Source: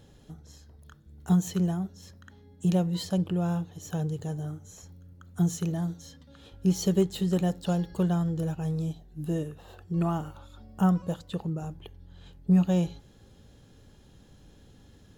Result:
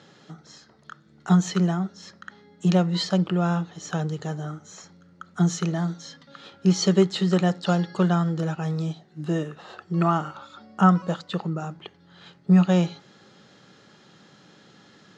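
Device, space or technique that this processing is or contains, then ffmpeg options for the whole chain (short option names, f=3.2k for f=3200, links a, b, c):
television speaker: -af "highpass=f=170:w=0.5412,highpass=f=170:w=1.3066,equalizer=f=260:t=q:w=4:g=-8,equalizer=f=470:t=q:w=4:g=-4,equalizer=f=1.3k:t=q:w=4:g=9,equalizer=f=2k:t=q:w=4:g=6,equalizer=f=4.5k:t=q:w=4:g=4,lowpass=f=6.6k:w=0.5412,lowpass=f=6.6k:w=1.3066,volume=7.5dB"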